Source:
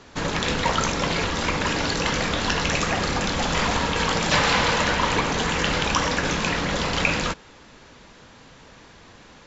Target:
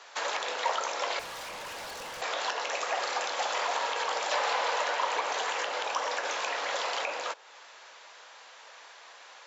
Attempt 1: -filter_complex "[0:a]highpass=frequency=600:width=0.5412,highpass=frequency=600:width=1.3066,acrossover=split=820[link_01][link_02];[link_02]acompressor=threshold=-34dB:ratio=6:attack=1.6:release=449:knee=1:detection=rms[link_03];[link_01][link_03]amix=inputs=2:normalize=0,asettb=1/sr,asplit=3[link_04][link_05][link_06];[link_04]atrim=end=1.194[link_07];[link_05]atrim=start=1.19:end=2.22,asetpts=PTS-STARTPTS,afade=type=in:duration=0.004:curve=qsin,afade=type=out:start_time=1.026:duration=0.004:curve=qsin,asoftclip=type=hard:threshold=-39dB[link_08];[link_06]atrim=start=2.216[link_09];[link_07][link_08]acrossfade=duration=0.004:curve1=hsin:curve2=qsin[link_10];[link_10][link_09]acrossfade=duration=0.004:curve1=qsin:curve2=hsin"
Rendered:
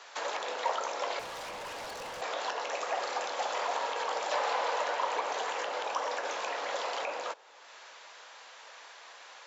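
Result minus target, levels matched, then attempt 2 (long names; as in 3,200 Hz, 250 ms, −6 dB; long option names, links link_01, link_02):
downward compressor: peak gain reduction +5.5 dB
-filter_complex "[0:a]highpass=frequency=600:width=0.5412,highpass=frequency=600:width=1.3066,acrossover=split=820[link_01][link_02];[link_02]acompressor=threshold=-27.5dB:ratio=6:attack=1.6:release=449:knee=1:detection=rms[link_03];[link_01][link_03]amix=inputs=2:normalize=0,asettb=1/sr,asplit=3[link_04][link_05][link_06];[link_04]atrim=end=1.194[link_07];[link_05]atrim=start=1.19:end=2.22,asetpts=PTS-STARTPTS,afade=type=in:duration=0.004:curve=qsin,afade=type=out:start_time=1.026:duration=0.004:curve=qsin,asoftclip=type=hard:threshold=-39dB[link_08];[link_06]atrim=start=2.216[link_09];[link_07][link_08]acrossfade=duration=0.004:curve1=hsin:curve2=qsin[link_10];[link_10][link_09]acrossfade=duration=0.004:curve1=qsin:curve2=hsin"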